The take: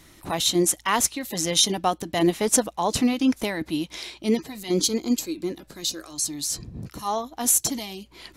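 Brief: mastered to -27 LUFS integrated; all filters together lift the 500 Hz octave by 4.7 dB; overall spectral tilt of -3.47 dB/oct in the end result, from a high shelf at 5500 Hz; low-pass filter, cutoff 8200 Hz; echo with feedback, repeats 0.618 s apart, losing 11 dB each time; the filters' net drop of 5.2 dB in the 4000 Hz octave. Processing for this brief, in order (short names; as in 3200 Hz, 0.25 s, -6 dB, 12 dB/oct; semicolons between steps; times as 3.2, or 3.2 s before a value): LPF 8200 Hz; bell 500 Hz +6.5 dB; bell 4000 Hz -9 dB; high shelf 5500 Hz +6.5 dB; feedback echo 0.618 s, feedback 28%, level -11 dB; gain -4 dB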